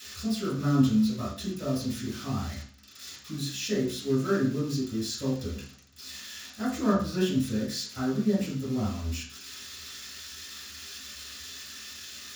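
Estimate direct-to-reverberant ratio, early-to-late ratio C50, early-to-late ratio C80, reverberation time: −8.5 dB, 4.5 dB, 9.5 dB, 0.45 s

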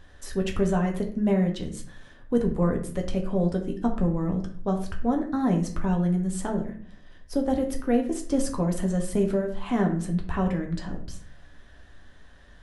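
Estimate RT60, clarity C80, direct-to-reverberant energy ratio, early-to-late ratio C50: 0.50 s, 13.0 dB, 1.5 dB, 9.0 dB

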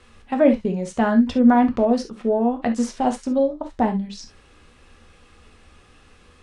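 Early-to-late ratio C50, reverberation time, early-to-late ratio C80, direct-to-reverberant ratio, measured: 11.0 dB, non-exponential decay, 54.5 dB, 4.5 dB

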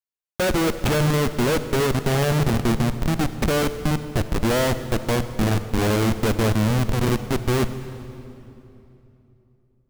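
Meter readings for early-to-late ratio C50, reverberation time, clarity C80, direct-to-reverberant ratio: 11.5 dB, 3.0 s, 12.0 dB, 11.0 dB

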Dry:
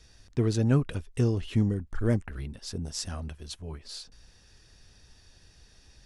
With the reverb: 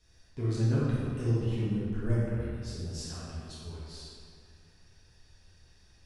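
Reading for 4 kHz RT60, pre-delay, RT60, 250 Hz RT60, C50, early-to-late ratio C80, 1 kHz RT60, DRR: 1.5 s, 6 ms, 2.3 s, 2.5 s, −3.5 dB, −1.0 dB, 2.2 s, −9.5 dB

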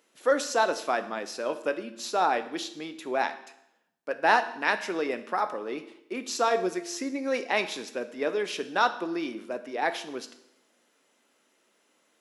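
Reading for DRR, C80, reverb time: 9.0 dB, 15.0 dB, 0.80 s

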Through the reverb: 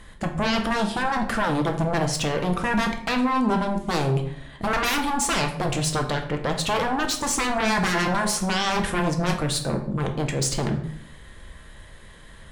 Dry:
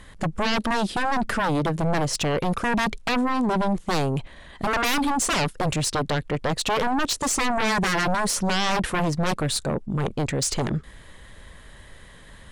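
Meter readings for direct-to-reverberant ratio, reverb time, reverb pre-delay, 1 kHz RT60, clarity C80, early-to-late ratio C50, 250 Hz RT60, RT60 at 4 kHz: 3.5 dB, 0.70 s, 5 ms, 0.65 s, 12.5 dB, 9.0 dB, 0.90 s, 0.45 s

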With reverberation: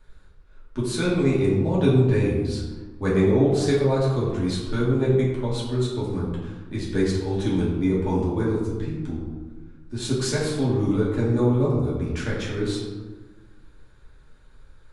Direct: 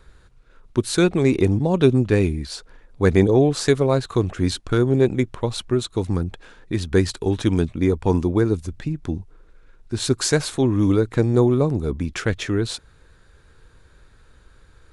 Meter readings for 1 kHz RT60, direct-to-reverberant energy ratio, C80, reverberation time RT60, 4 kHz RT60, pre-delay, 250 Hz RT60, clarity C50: 1.2 s, −7.0 dB, 4.0 dB, 1.2 s, 0.70 s, 3 ms, 1.6 s, 1.5 dB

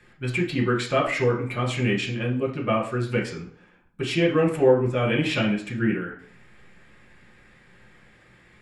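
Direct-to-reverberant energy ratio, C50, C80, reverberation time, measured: −3.0 dB, 8.5 dB, 12.5 dB, 0.50 s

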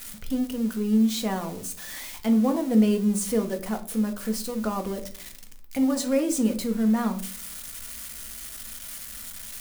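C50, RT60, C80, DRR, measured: 12.5 dB, 0.45 s, 19.0 dB, 4.5 dB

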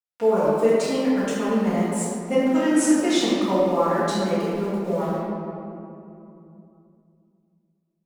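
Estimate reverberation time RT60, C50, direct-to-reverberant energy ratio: 2.8 s, −3.0 dB, −13.5 dB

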